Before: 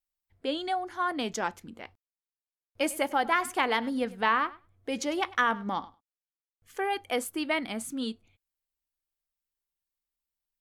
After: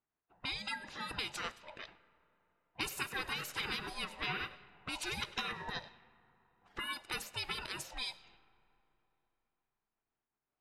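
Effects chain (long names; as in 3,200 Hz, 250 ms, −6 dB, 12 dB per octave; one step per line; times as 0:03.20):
neighbouring bands swapped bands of 500 Hz
gate on every frequency bin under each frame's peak −15 dB weak
downward compressor 2 to 1, threshold −57 dBFS, peak gain reduction 13.5 dB
on a send at −18 dB: convolution reverb RT60 3.6 s, pre-delay 10 ms
on the sum: low-pass that shuts in the quiet parts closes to 1,300 Hz, open at −49 dBFS
level +12 dB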